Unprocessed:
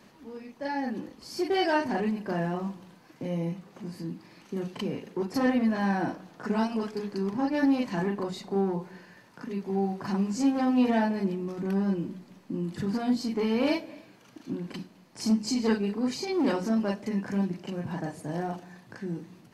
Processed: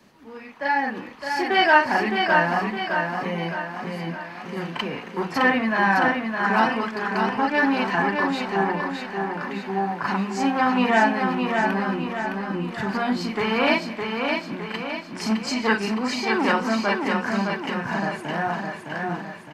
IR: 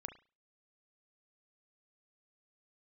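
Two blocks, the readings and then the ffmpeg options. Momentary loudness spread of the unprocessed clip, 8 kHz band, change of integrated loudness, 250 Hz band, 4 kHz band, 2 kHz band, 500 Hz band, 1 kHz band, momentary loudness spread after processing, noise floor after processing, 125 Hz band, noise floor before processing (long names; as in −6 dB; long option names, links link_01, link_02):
14 LU, +3.0 dB, +6.0 dB, +2.0 dB, +10.0 dB, +16.0 dB, +5.0 dB, +12.5 dB, 11 LU, −40 dBFS, +2.0 dB, −56 dBFS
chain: -filter_complex "[0:a]acrossover=split=320|850|2900[link_01][link_02][link_03][link_04];[link_03]dynaudnorm=framelen=130:gausssize=5:maxgain=16dB[link_05];[link_01][link_02][link_05][link_04]amix=inputs=4:normalize=0,aecho=1:1:612|1224|1836|2448|3060|3672|4284:0.596|0.304|0.155|0.079|0.0403|0.0206|0.0105"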